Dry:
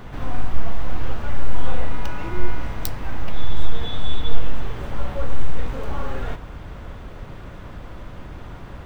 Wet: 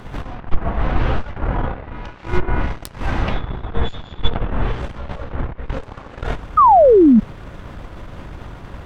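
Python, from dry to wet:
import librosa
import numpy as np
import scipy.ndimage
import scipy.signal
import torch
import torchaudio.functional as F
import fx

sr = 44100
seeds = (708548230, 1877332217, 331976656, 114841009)

y = fx.env_lowpass_down(x, sr, base_hz=1700.0, full_db=-6.5)
y = fx.cheby_harmonics(y, sr, harmonics=(6,), levels_db=(-11,), full_scale_db=-1.0)
y = fx.spec_paint(y, sr, seeds[0], shape='fall', start_s=6.57, length_s=0.63, low_hz=200.0, high_hz=1300.0, level_db=-12.0)
y = y * librosa.db_to_amplitude(3.0)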